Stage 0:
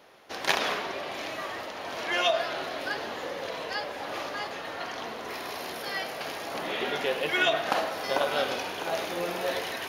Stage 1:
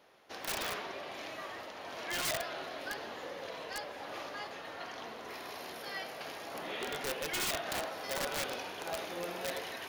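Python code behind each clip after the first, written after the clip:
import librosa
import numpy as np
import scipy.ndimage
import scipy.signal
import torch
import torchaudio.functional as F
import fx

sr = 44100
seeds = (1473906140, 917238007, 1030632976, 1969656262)

y = (np.mod(10.0 ** (20.5 / 20.0) * x + 1.0, 2.0) - 1.0) / 10.0 ** (20.5 / 20.0)
y = F.gain(torch.from_numpy(y), -8.0).numpy()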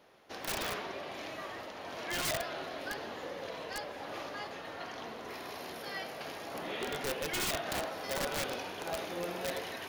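y = fx.low_shelf(x, sr, hz=370.0, db=5.5)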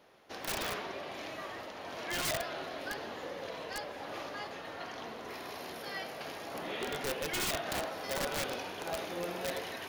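y = x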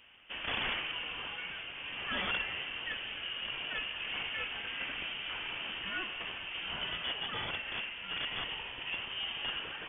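y = fx.rider(x, sr, range_db=5, speed_s=2.0)
y = fx.freq_invert(y, sr, carrier_hz=3400)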